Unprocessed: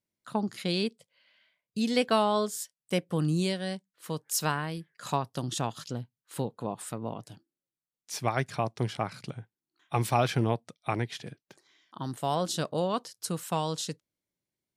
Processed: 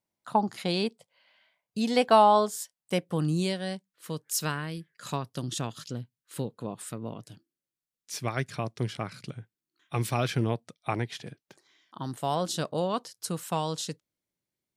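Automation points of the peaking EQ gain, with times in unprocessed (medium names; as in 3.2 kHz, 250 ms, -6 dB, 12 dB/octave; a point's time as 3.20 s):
peaking EQ 820 Hz 0.81 oct
2.39 s +10.5 dB
3.06 s +2 dB
3.67 s +2 dB
4.26 s -7.5 dB
10.32 s -7.5 dB
10.90 s +0.5 dB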